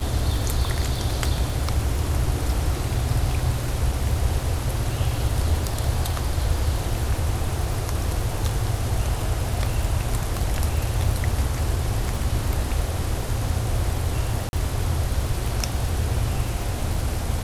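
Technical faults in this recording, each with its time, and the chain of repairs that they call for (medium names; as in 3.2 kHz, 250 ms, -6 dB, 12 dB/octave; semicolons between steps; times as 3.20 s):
crackle 51 per s -28 dBFS
14.49–14.53 s: dropout 41 ms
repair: de-click; interpolate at 14.49 s, 41 ms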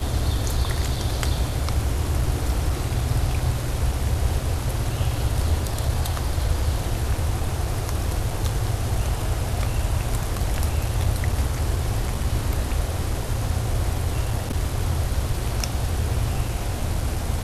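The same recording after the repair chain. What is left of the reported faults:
nothing left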